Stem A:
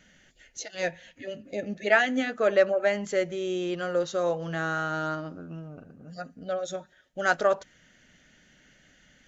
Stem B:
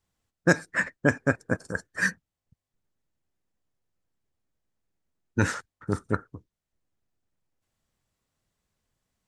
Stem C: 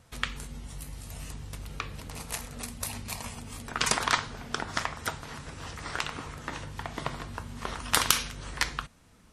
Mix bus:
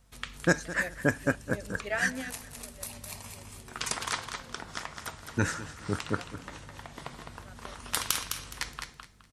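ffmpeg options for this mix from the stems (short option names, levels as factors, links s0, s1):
-filter_complex "[0:a]volume=0.266,asplit=2[s0][s1];[s1]volume=0.0891[s2];[1:a]volume=0.631,asplit=3[s3][s4][s5];[s4]volume=0.168[s6];[2:a]aeval=exprs='val(0)+0.002*(sin(2*PI*50*n/s)+sin(2*PI*2*50*n/s)/2+sin(2*PI*3*50*n/s)/3+sin(2*PI*4*50*n/s)/4+sin(2*PI*5*50*n/s)/5)':c=same,volume=0.376,asplit=2[s7][s8];[s8]volume=0.501[s9];[s5]apad=whole_len=409112[s10];[s0][s10]sidechaingate=range=0.0224:threshold=0.00158:ratio=16:detection=peak[s11];[s2][s6][s9]amix=inputs=3:normalize=0,aecho=0:1:209|418|627|836:1|0.25|0.0625|0.0156[s12];[s11][s3][s7][s12]amix=inputs=4:normalize=0,highshelf=f=4700:g=5"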